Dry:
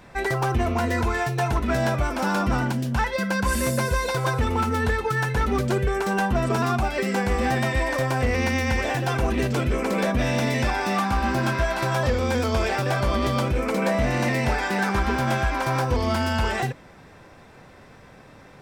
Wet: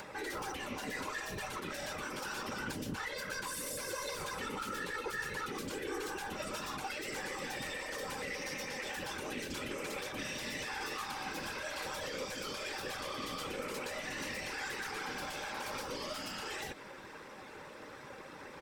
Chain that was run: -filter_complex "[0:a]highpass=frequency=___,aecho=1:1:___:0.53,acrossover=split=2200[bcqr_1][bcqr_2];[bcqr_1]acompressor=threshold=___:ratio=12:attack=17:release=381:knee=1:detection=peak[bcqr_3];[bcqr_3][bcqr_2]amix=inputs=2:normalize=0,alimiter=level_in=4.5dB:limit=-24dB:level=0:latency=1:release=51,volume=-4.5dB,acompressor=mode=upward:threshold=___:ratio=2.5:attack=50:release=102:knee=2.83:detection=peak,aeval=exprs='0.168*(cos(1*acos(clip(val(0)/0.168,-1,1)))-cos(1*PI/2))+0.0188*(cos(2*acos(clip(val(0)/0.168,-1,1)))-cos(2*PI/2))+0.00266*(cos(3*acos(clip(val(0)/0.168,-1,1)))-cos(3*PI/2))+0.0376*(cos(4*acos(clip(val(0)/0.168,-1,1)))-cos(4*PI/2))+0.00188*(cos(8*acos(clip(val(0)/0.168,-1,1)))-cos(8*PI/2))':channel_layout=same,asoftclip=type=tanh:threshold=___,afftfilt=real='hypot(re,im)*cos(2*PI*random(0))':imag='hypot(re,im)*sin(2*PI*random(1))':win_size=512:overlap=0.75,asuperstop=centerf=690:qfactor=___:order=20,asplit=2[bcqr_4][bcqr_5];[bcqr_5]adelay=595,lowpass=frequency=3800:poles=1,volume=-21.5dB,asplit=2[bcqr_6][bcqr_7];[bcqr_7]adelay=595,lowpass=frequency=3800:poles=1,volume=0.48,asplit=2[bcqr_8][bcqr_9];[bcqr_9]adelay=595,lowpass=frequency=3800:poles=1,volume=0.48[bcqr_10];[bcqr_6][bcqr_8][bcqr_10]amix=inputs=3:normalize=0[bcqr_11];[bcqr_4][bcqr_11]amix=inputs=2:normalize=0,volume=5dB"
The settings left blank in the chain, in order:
280, 7.5, -32dB, -48dB, -30dB, 6.5